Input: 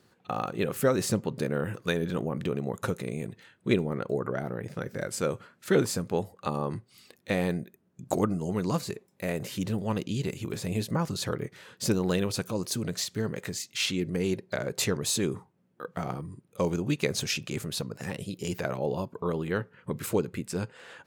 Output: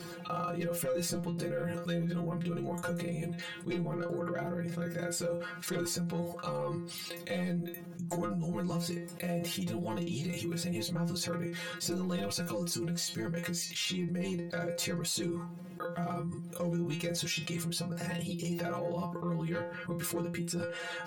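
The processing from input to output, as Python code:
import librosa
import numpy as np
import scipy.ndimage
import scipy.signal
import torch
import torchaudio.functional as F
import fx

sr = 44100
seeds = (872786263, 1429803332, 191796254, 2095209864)

y = 10.0 ** (-19.5 / 20.0) * np.tanh(x / 10.0 ** (-19.5 / 20.0))
y = fx.stiff_resonator(y, sr, f0_hz=170.0, decay_s=0.23, stiffness=0.002)
y = fx.env_flatten(y, sr, amount_pct=70)
y = y * librosa.db_to_amplitude(-1.5)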